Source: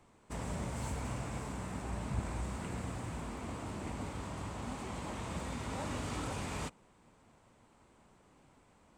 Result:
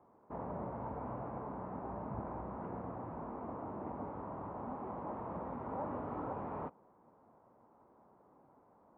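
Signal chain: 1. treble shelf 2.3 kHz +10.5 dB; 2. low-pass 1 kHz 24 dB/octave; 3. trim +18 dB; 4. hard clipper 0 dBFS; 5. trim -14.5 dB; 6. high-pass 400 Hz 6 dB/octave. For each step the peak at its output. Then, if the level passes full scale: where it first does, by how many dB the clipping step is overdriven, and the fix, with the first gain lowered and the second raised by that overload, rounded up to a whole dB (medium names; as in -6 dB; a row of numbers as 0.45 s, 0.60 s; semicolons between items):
-22.0 dBFS, -22.5 dBFS, -4.5 dBFS, -4.5 dBFS, -19.0 dBFS, -28.5 dBFS; nothing clips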